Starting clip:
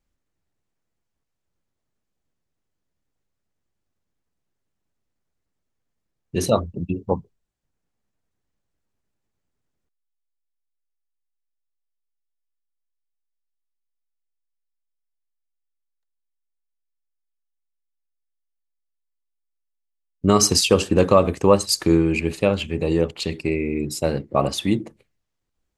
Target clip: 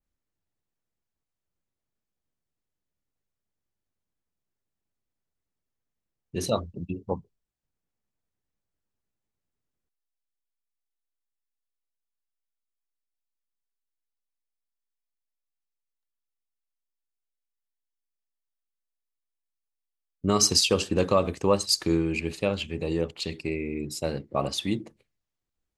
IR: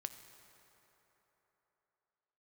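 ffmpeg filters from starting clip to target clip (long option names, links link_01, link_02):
-af "adynamicequalizer=threshold=0.0178:dfrequency=4500:dqfactor=0.84:tfrequency=4500:tqfactor=0.84:attack=5:release=100:ratio=0.375:range=3:mode=boostabove:tftype=bell,volume=-7.5dB"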